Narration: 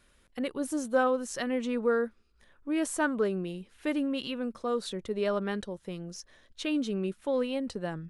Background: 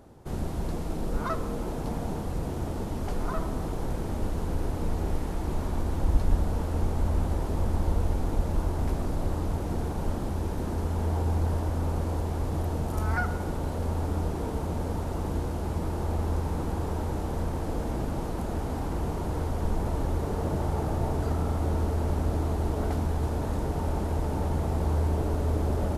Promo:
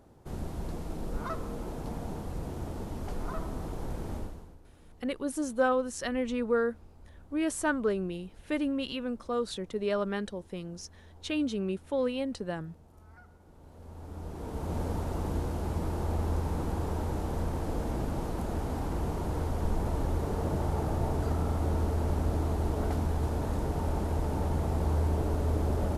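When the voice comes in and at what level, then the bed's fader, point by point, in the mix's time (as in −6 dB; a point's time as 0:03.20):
4.65 s, −0.5 dB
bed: 0:04.17 −5.5 dB
0:04.61 −27 dB
0:13.41 −27 dB
0:14.76 −2 dB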